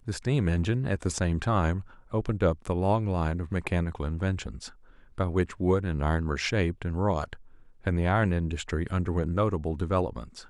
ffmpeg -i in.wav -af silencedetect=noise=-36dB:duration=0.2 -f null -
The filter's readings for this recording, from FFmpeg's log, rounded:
silence_start: 1.81
silence_end: 2.14 | silence_duration: 0.32
silence_start: 4.68
silence_end: 5.18 | silence_duration: 0.50
silence_start: 7.33
silence_end: 7.86 | silence_duration: 0.53